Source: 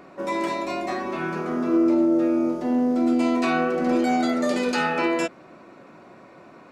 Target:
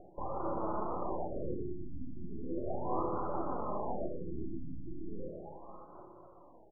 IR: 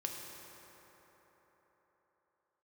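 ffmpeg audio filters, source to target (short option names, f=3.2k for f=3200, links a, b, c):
-filter_complex "[0:a]afwtdn=0.0501,equalizer=f=210:t=o:w=1.1:g=-13,acompressor=threshold=-30dB:ratio=8,aresample=16000,aeval=exprs='(mod(39.8*val(0)+1,2)-1)/39.8':c=same,aresample=44100,aphaser=in_gain=1:out_gain=1:delay=4.8:decay=0.62:speed=0.67:type=sinusoidal,acrossover=split=350|1200[a][b][c];[a]acompressor=threshold=-51dB:ratio=4[d];[b]acompressor=threshold=-44dB:ratio=4[e];[c]acompressor=threshold=-42dB:ratio=4[f];[d][e][f]amix=inputs=3:normalize=0,aeval=exprs='max(val(0),0)':c=same,asuperstop=centerf=1900:order=8:qfactor=1.2,aecho=1:1:565:0.188[g];[1:a]atrim=start_sample=2205,afade=t=out:st=0.38:d=0.01,atrim=end_sample=17199[h];[g][h]afir=irnorm=-1:irlink=0,afftfilt=real='re*lt(b*sr/1024,330*pow(1700/330,0.5+0.5*sin(2*PI*0.37*pts/sr)))':imag='im*lt(b*sr/1024,330*pow(1700/330,0.5+0.5*sin(2*PI*0.37*pts/sr)))':win_size=1024:overlap=0.75,volume=12dB"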